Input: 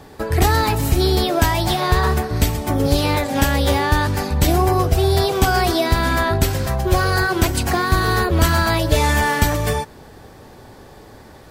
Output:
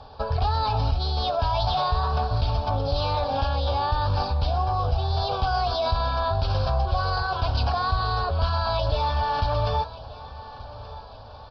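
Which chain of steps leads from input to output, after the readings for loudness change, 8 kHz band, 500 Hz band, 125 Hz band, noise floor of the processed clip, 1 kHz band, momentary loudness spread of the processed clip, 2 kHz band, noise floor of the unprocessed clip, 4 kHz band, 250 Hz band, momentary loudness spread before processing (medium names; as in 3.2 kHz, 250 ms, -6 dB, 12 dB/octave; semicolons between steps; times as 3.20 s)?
-7.0 dB, under -25 dB, -8.0 dB, -6.0 dB, -42 dBFS, -3.5 dB, 16 LU, -13.5 dB, -43 dBFS, -6.5 dB, -18.0 dB, 4 LU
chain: peaking EQ 180 Hz -11.5 dB 0.84 oct; resampled via 11.025 kHz; flange 0.58 Hz, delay 3.4 ms, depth 6.8 ms, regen -89%; in parallel at 0 dB: compressor with a negative ratio -27 dBFS, ratio -0.5; on the sum: static phaser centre 820 Hz, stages 4; on a send: feedback delay 1180 ms, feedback 44%, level -17.5 dB; on the sum: short-mantissa float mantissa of 8-bit; trim -2 dB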